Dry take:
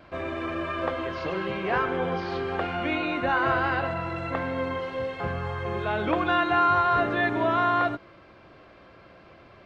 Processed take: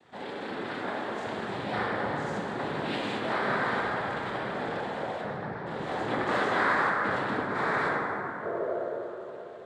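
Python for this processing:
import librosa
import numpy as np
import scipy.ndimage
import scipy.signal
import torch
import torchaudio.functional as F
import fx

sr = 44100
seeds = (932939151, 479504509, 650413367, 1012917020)

y = fx.cheby_ripple(x, sr, hz=1800.0, ripple_db=3, at=(5.2, 5.65), fade=0.02)
y = fx.over_compress(y, sr, threshold_db=-28.0, ratio=-0.5, at=(6.89, 7.55))
y = fx.noise_vocoder(y, sr, seeds[0], bands=6)
y = fx.spec_paint(y, sr, seeds[1], shape='noise', start_s=8.43, length_s=0.36, low_hz=340.0, high_hz=700.0, level_db=-27.0)
y = fx.rev_plate(y, sr, seeds[2], rt60_s=4.0, hf_ratio=0.3, predelay_ms=0, drr_db=-3.0)
y = F.gain(torch.from_numpy(y), -8.0).numpy()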